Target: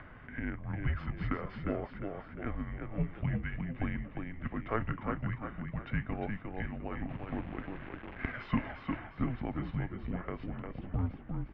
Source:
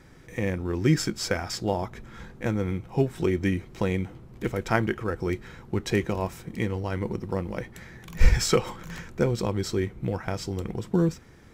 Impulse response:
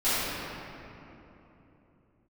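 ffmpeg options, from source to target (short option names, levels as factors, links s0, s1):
-filter_complex "[0:a]asplit=6[s0][s1][s2][s3][s4][s5];[s1]adelay=353,afreqshift=43,volume=0.501[s6];[s2]adelay=706,afreqshift=86,volume=0.195[s7];[s3]adelay=1059,afreqshift=129,volume=0.0759[s8];[s4]adelay=1412,afreqshift=172,volume=0.0299[s9];[s5]adelay=1765,afreqshift=215,volume=0.0116[s10];[s0][s6][s7][s8][s9][s10]amix=inputs=6:normalize=0,asettb=1/sr,asplit=3[s11][s12][s13];[s11]atrim=end=7.094[s14];[s12]atrim=start=7.09:end=8.95,asetpts=PTS-STARTPTS,afade=t=in:d=0.004:c=qsin,afade=t=out:st=1.856:d=0.004:c=qsin,acrusher=bits=7:dc=4:mix=0:aa=0.000001[s15];[s13]atrim=start=8.946[s16];[s14][s15]acrossfade=d=0.004:c1=hsin:c2=qsin[s17];[s17][s16]acrossfade=d=0.004:c1=qsin:c2=hsin,aeval=exprs='0.631*(cos(1*acos(clip(val(0)/0.631,-1,1)))-cos(1*PI/2))+0.178*(cos(3*acos(clip(val(0)/0.631,-1,1)))-cos(3*PI/2))+0.0794*(cos(5*acos(clip(val(0)/0.631,-1,1)))-cos(5*PI/2))':c=same,acompressor=mode=upward:threshold=0.0282:ratio=2.5,highpass=f=210:t=q:w=0.5412,highpass=f=210:t=q:w=1.307,lowpass=f=2900:t=q:w=0.5176,lowpass=f=2900:t=q:w=0.7071,lowpass=f=2900:t=q:w=1.932,afreqshift=-240,volume=0.596"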